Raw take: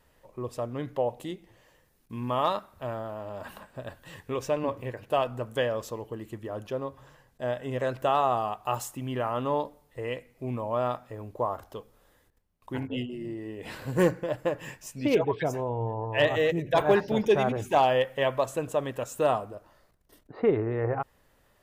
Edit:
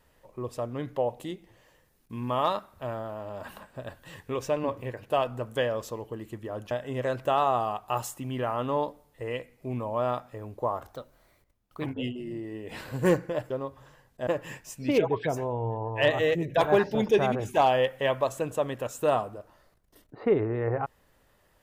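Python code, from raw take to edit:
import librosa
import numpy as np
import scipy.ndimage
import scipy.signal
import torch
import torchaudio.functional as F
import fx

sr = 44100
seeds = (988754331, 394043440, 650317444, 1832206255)

y = fx.edit(x, sr, fx.move(start_s=6.71, length_s=0.77, to_s=14.44),
    fx.speed_span(start_s=11.7, length_s=1.1, speed=1.18), tone=tone)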